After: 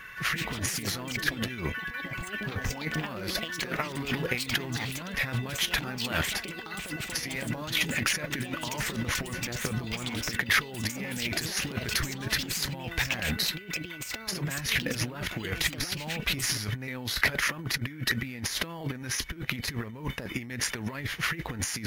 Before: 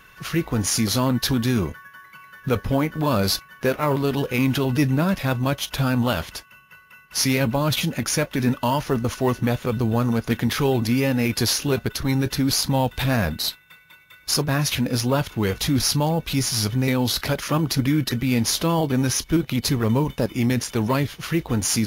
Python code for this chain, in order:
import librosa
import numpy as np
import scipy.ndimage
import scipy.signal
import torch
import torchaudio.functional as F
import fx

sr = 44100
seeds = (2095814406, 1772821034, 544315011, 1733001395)

y = fx.over_compress(x, sr, threshold_db=-26.0, ratio=-0.5)
y = fx.peak_eq(y, sr, hz=1900.0, db=12.5, octaves=0.81)
y = fx.echo_pitch(y, sr, ms=195, semitones=5, count=2, db_per_echo=-6.0)
y = y * 10.0 ** (-7.0 / 20.0)